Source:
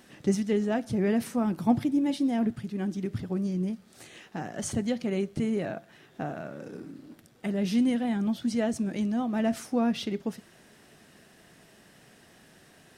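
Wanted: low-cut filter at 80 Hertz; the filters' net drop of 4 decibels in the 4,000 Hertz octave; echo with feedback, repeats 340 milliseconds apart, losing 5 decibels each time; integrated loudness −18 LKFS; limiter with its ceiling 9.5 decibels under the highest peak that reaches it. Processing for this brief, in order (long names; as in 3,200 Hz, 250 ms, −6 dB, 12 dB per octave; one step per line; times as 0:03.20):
high-pass filter 80 Hz
parametric band 4,000 Hz −5.5 dB
brickwall limiter −21 dBFS
repeating echo 340 ms, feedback 56%, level −5 dB
level +12 dB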